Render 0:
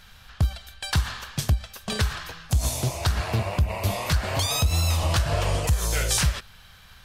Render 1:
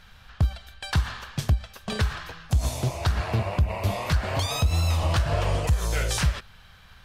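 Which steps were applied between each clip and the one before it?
high-shelf EQ 4,600 Hz −9.5 dB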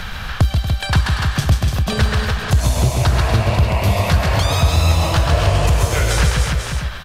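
multi-tap delay 134/236/292/487/585 ms −4/−11.5/−7/−13/−17 dB
multiband upward and downward compressor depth 70%
level +7 dB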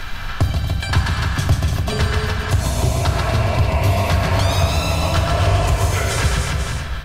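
convolution reverb RT60 1.6 s, pre-delay 3 ms, DRR 1 dB
level −3.5 dB

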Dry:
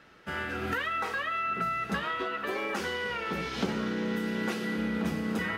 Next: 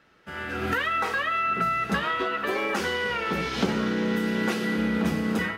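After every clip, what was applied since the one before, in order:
automatic gain control gain up to 10 dB
level −4.5 dB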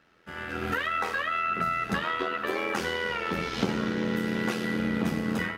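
amplitude modulation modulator 83 Hz, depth 45%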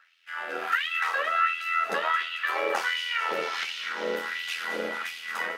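delay with a high-pass on its return 222 ms, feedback 57%, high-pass 1,400 Hz, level −9 dB
auto-filter high-pass sine 1.4 Hz 500–3,000 Hz

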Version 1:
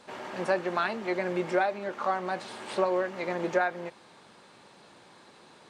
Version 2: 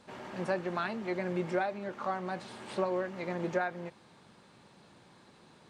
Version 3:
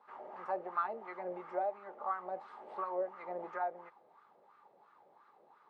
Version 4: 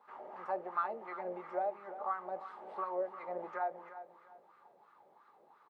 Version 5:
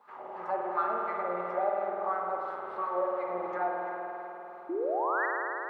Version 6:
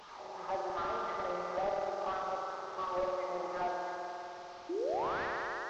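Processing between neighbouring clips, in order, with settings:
bass and treble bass +10 dB, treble 0 dB; level −6 dB
LFO wah 2.9 Hz 580–1,300 Hz, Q 4; hollow resonant body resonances 420/830/1,200/2,000 Hz, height 7 dB, ringing for 25 ms; level +1 dB
repeating echo 348 ms, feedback 30%, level −13 dB
sound drawn into the spectrogram rise, 0:04.69–0:05.26, 320–2,000 Hz −36 dBFS; spring reverb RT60 3.7 s, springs 50 ms, chirp 60 ms, DRR −2 dB; level +3.5 dB
linear delta modulator 32 kbit/s, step −43.5 dBFS; level −3.5 dB

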